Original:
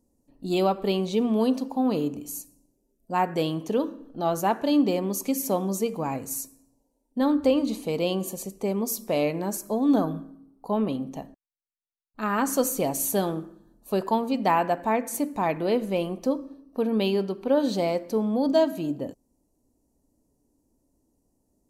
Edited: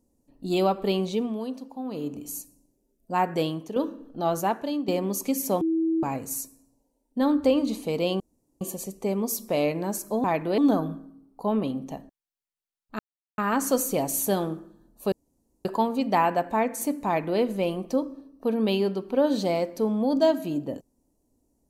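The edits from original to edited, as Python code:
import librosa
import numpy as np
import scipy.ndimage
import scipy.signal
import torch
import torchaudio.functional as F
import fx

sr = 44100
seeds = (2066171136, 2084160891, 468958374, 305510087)

y = fx.edit(x, sr, fx.fade_down_up(start_s=1.04, length_s=1.22, db=-10.0, fade_s=0.36),
    fx.fade_out_to(start_s=3.42, length_s=0.34, floor_db=-9.5),
    fx.fade_out_to(start_s=4.37, length_s=0.51, floor_db=-13.0),
    fx.bleep(start_s=5.61, length_s=0.42, hz=325.0, db=-21.0),
    fx.insert_room_tone(at_s=8.2, length_s=0.41),
    fx.insert_silence(at_s=12.24, length_s=0.39),
    fx.insert_room_tone(at_s=13.98, length_s=0.53),
    fx.duplicate(start_s=15.39, length_s=0.34, to_s=9.83), tone=tone)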